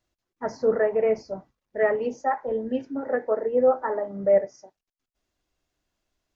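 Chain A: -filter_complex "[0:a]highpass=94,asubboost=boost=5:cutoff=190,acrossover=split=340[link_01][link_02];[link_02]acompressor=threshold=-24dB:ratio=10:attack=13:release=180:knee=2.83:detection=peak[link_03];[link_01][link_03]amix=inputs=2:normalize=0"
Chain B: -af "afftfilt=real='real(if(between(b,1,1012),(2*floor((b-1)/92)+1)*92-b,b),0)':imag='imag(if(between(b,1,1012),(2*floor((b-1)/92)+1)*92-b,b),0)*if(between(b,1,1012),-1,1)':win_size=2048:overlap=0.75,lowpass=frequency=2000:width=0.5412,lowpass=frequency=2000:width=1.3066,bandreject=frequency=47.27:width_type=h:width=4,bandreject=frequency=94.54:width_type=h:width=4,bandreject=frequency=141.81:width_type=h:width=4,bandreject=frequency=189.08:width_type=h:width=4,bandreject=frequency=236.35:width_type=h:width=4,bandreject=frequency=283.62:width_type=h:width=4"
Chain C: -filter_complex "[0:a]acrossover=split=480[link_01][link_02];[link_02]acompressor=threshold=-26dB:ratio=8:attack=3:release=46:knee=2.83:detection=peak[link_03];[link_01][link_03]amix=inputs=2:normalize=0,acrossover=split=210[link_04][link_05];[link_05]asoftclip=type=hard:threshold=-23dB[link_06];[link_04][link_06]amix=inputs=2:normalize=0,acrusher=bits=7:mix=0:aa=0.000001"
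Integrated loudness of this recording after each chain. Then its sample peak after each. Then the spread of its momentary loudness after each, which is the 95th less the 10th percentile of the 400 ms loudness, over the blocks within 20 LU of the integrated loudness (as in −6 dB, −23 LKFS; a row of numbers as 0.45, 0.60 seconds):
−28.5, −23.5, −29.0 LKFS; −14.5, −10.5, −20.0 dBFS; 10, 14, 10 LU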